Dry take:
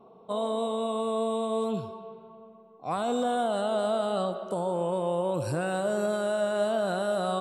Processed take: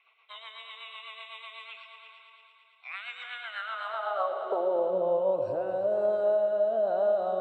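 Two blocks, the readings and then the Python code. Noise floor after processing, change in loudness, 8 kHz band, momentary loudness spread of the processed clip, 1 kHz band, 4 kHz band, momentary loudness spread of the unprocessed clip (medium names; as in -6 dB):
-63 dBFS, 0.0 dB, under -25 dB, 18 LU, -4.0 dB, -3.5 dB, 7 LU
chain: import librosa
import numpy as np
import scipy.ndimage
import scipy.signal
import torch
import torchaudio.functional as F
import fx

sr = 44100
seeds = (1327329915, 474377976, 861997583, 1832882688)

y = fx.filter_sweep_bandpass(x, sr, from_hz=2100.0, to_hz=630.0, start_s=3.84, end_s=4.68, q=2.9)
y = scipy.signal.sosfilt(scipy.signal.butter(2, 5500.0, 'lowpass', fs=sr, output='sos'), y)
y = fx.peak_eq(y, sr, hz=160.0, db=-7.5, octaves=0.34)
y = fx.rotary_switch(y, sr, hz=8.0, then_hz=1.1, switch_at_s=4.13)
y = fx.filter_sweep_highpass(y, sr, from_hz=2200.0, to_hz=63.0, start_s=3.38, end_s=5.72, q=3.1)
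y = fx.echo_heads(y, sr, ms=113, heads='all three', feedback_pct=55, wet_db=-15)
y = fx.band_squash(y, sr, depth_pct=40)
y = F.gain(torch.from_numpy(y), 5.5).numpy()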